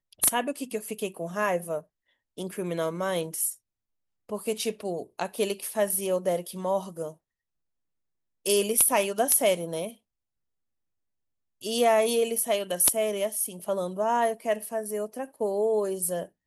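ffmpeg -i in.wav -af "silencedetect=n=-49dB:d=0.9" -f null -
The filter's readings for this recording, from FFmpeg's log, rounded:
silence_start: 7.14
silence_end: 8.45 | silence_duration: 1.32
silence_start: 9.96
silence_end: 11.61 | silence_duration: 1.65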